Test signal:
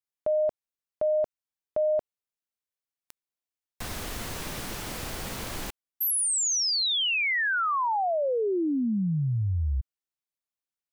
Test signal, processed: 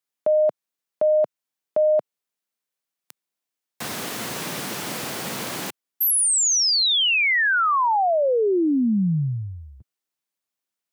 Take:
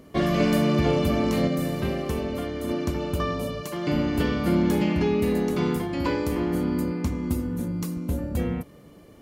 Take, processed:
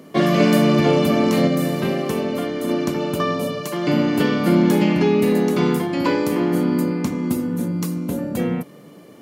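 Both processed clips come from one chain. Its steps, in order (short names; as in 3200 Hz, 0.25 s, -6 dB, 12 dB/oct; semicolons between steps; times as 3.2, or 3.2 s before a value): HPF 140 Hz 24 dB/oct; gain +6.5 dB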